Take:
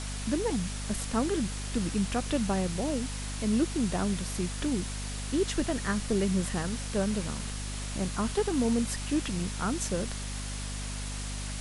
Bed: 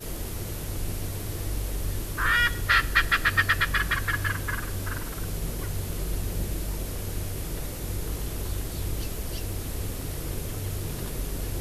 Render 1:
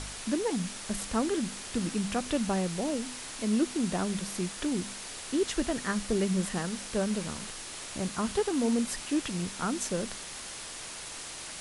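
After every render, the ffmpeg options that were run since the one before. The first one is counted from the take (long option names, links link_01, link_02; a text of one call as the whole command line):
ffmpeg -i in.wav -af "bandreject=frequency=50:width_type=h:width=4,bandreject=frequency=100:width_type=h:width=4,bandreject=frequency=150:width_type=h:width=4,bandreject=frequency=200:width_type=h:width=4,bandreject=frequency=250:width_type=h:width=4" out.wav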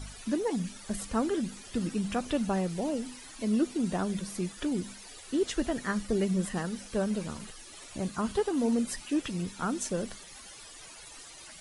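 ffmpeg -i in.wav -af "afftdn=noise_reduction=14:noise_floor=-42" out.wav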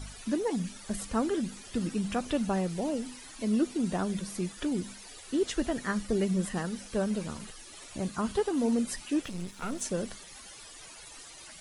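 ffmpeg -i in.wav -filter_complex "[0:a]asplit=3[link_01][link_02][link_03];[link_01]afade=type=out:start_time=9.23:duration=0.02[link_04];[link_02]aeval=exprs='if(lt(val(0),0),0.251*val(0),val(0))':channel_layout=same,afade=type=in:start_time=9.23:duration=0.02,afade=type=out:start_time=9.8:duration=0.02[link_05];[link_03]afade=type=in:start_time=9.8:duration=0.02[link_06];[link_04][link_05][link_06]amix=inputs=3:normalize=0" out.wav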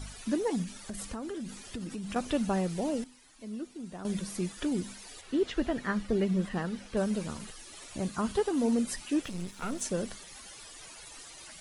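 ffmpeg -i in.wav -filter_complex "[0:a]asettb=1/sr,asplit=3[link_01][link_02][link_03];[link_01]atrim=end=0.634[link_04];[link_02]atrim=start=0.63:end=2.16,asetpts=PTS-STARTPTS,afade=type=in:duration=0.004:curve=qsin,afade=type=out:start_time=1.526:duration=0.004:curve=qsin,acompressor=threshold=-34dB:ratio=10:attack=3.2:release=140:knee=1:detection=peak[link_05];[link_03]atrim=start=2.156[link_06];[link_04][link_05]acrossfade=duration=0.004:curve1=hsin:curve2=qsin[link_07];[link_07][link_06]acrossfade=duration=0.004:curve1=qsin:curve2=hsin,asettb=1/sr,asplit=3[link_08][link_09][link_10];[link_08]atrim=end=5.214[link_11];[link_09]atrim=start=5.21:end=6.97,asetpts=PTS-STARTPTS,afade=type=in:duration=0.004:curve=qsin,afade=type=out:start_time=1.756:duration=0.004:curve=qsin,acrossover=split=4300[link_12][link_13];[link_13]acompressor=threshold=-59dB:ratio=4:attack=1:release=60[link_14];[link_12][link_14]amix=inputs=2:normalize=0[link_15];[link_10]atrim=start=6.966[link_16];[link_11][link_15]acrossfade=duration=0.004:curve1=hsin:curve2=qsin[link_17];[link_17][link_16]acrossfade=duration=0.004:curve1=qsin:curve2=hsin,asplit=3[link_18][link_19][link_20];[link_18]atrim=end=3.042[link_21];[link_19]atrim=start=3.038:end=4.052,asetpts=PTS-STARTPTS,volume=-12dB[link_22];[link_20]atrim=start=4.048[link_23];[link_21][link_22]acrossfade=duration=0.004:curve1=hsin:curve2=hsin[link_24];[link_24][link_23]acrossfade=duration=0.004:curve1=hsin:curve2=hsin" out.wav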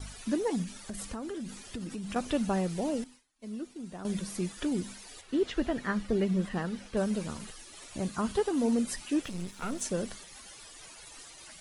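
ffmpeg -i in.wav -af "agate=range=-33dB:threshold=-46dB:ratio=3:detection=peak" out.wav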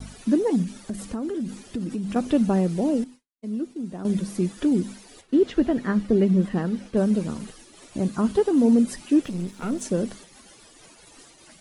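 ffmpeg -i in.wav -af "agate=range=-33dB:threshold=-46dB:ratio=3:detection=peak,equalizer=frequency=260:width=0.53:gain=10.5" out.wav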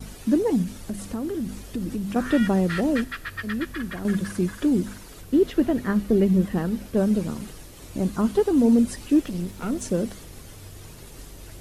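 ffmpeg -i in.wav -i bed.wav -filter_complex "[1:a]volume=-11.5dB[link_01];[0:a][link_01]amix=inputs=2:normalize=0" out.wav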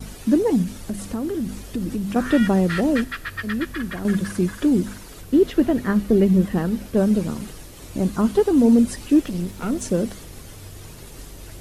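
ffmpeg -i in.wav -af "volume=3dB" out.wav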